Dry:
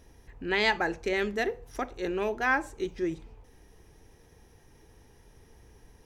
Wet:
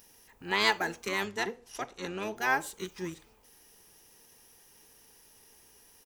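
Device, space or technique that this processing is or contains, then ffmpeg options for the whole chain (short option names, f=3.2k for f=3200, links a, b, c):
octave pedal: -filter_complex "[0:a]asplit=2[a][b];[b]asetrate=22050,aresample=44100,atempo=2,volume=-2dB[c];[a][c]amix=inputs=2:normalize=0,aemphasis=mode=production:type=riaa,asettb=1/sr,asplit=3[d][e][f];[d]atrim=end=1.254[g];[e]atrim=start=1.25:end=2.36,asetpts=PTS-STARTPTS,afade=t=in:d=0.004:c=qsin,afade=t=out:st=1.106:d=0.004:c=qsin,lowpass=7.9k[h];[f]atrim=start=2.356[i];[g][h]acrossfade=d=0.004:c1=hsin:c2=qsin[j];[j][i]acrossfade=d=0.004:c1=qsin:c2=hsin,volume=-4dB"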